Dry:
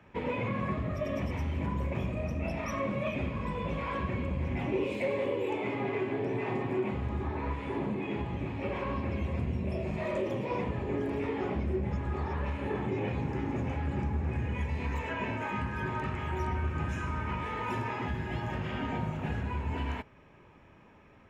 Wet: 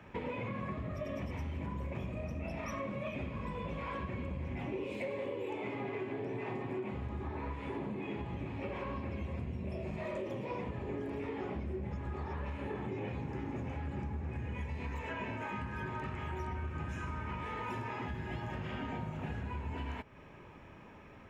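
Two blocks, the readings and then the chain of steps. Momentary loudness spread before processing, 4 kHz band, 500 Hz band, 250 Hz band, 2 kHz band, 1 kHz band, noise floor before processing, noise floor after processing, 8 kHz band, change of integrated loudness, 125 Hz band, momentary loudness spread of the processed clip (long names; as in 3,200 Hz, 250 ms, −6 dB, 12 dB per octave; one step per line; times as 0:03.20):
2 LU, −6.0 dB, −6.5 dB, −6.5 dB, −6.0 dB, −6.0 dB, −57 dBFS, −53 dBFS, can't be measured, −6.5 dB, −6.5 dB, 1 LU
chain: downward compressor 3 to 1, threshold −43 dBFS, peak gain reduction 12.5 dB
level +3.5 dB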